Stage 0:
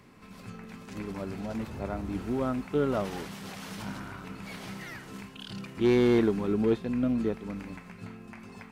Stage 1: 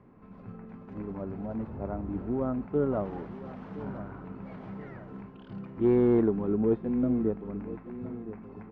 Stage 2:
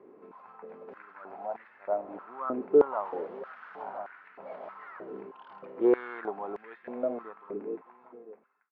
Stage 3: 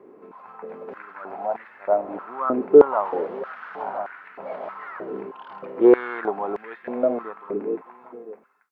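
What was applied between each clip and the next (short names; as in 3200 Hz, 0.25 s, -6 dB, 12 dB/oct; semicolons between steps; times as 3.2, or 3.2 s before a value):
LPF 1000 Hz 12 dB/oct; feedback echo 1.017 s, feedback 45%, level -15 dB
ending faded out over 1.55 s; air absorption 120 m; stepped high-pass 3.2 Hz 390–1800 Hz
AGC gain up to 4 dB; gain +5.5 dB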